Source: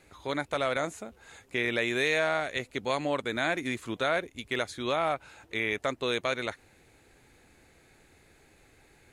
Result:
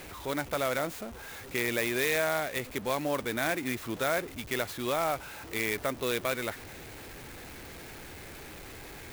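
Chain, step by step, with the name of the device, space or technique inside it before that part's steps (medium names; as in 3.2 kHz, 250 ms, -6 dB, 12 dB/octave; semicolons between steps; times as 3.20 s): early CD player with a faulty converter (jump at every zero crossing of -38 dBFS; sampling jitter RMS 0.036 ms); trim -2 dB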